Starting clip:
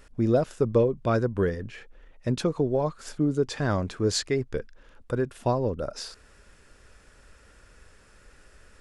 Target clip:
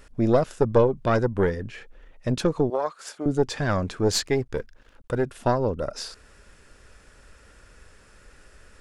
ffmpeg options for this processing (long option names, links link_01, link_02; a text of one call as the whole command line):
ffmpeg -i in.wav -filter_complex "[0:a]aeval=exprs='0.299*(cos(1*acos(clip(val(0)/0.299,-1,1)))-cos(1*PI/2))+0.106*(cos(2*acos(clip(val(0)/0.299,-1,1)))-cos(2*PI/2))+0.00188*(cos(6*acos(clip(val(0)/0.299,-1,1)))-cos(6*PI/2))':channel_layout=same,asettb=1/sr,asplit=3[link_01][link_02][link_03];[link_01]atrim=end=2.704[link_04];[link_02]atrim=start=2.7:end=3.26,asetpts=PTS-STARTPTS,afade=type=in:duration=0.004:curve=qsin,afade=type=out:start_time=0.556:duration=0.004:curve=qsin,highpass=530[link_05];[link_03]atrim=start=3.256[link_06];[link_04][link_05]acrossfade=duration=0.004:curve1=hsin:curve2=qsin[link_07];[link_07][link_06]acrossfade=duration=0.004:curve1=qsin:curve2=hsin,asettb=1/sr,asplit=3[link_08][link_09][link_10];[link_08]atrim=end=4.264[link_11];[link_09]atrim=start=4.26:end=5.25,asetpts=PTS-STARTPTS,afade=type=in:duration=0.004:curve=qsin,afade=type=out:start_time=0.986:duration=0.004:curve=qsin,aeval=exprs='sgn(val(0))*max(abs(val(0))-0.0015,0)':channel_layout=same[link_12];[link_10]atrim=start=5.246[link_13];[link_11][link_12]acrossfade=duration=0.004:curve1=hsin:curve2=qsin[link_14];[link_14][link_13]acrossfade=duration=0.004:curve1=qsin:curve2=hsin,volume=2.5dB" out.wav